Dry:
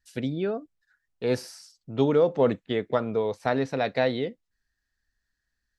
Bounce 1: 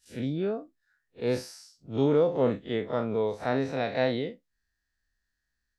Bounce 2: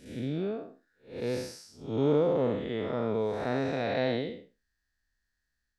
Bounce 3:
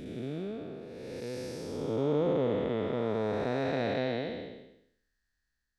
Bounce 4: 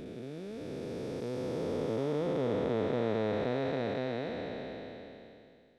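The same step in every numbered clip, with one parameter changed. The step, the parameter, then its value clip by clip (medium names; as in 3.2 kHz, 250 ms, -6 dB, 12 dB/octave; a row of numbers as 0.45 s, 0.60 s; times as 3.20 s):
spectral blur, width: 84 ms, 218 ms, 569 ms, 1620 ms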